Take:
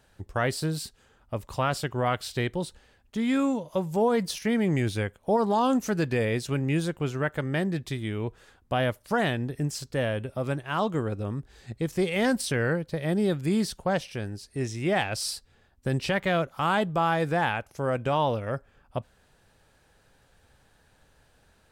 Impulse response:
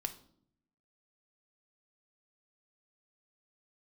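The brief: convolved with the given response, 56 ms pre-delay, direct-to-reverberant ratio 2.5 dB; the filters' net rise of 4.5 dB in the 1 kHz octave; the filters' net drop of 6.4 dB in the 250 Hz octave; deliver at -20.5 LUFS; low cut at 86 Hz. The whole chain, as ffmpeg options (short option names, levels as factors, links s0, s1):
-filter_complex "[0:a]highpass=86,equalizer=f=250:t=o:g=-9,equalizer=f=1000:t=o:g=6.5,asplit=2[s0][s1];[1:a]atrim=start_sample=2205,adelay=56[s2];[s1][s2]afir=irnorm=-1:irlink=0,volume=0.794[s3];[s0][s3]amix=inputs=2:normalize=0,volume=1.88"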